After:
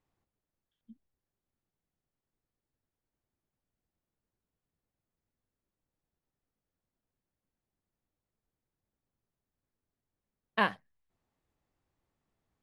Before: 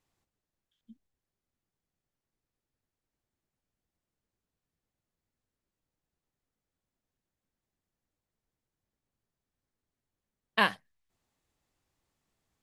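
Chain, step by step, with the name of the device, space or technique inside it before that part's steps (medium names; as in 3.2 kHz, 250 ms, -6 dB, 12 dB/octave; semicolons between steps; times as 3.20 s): through cloth (treble shelf 2.9 kHz -13 dB)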